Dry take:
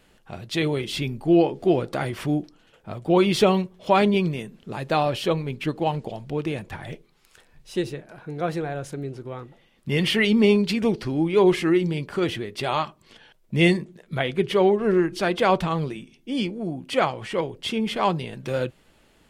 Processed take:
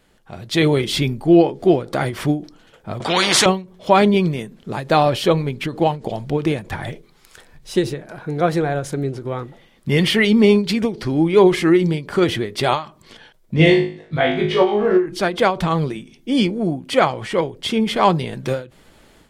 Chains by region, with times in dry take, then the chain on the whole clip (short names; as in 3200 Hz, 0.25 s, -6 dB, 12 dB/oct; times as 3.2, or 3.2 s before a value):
3–3.46 BPF 250–5400 Hz + spectral compressor 4:1
13.54–15.06 LPF 4700 Hz + notch comb 200 Hz + flutter echo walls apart 3.3 m, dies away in 0.45 s
whole clip: bell 2700 Hz -5.5 dB 0.21 oct; AGC gain up to 9.5 dB; ending taper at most 170 dB/s